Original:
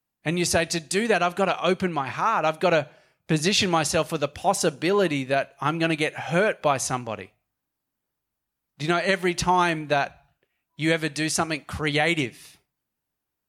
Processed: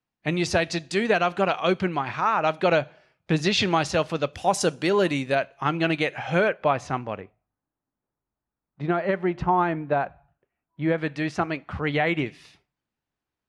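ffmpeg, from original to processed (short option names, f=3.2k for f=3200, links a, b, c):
-af "asetnsamples=n=441:p=0,asendcmd='4.33 lowpass f 8900;5.35 lowpass f 4500;6.49 lowpass f 2500;7.2 lowpass f 1300;10.98 lowpass f 2200;12.26 lowpass f 4600',lowpass=4.5k"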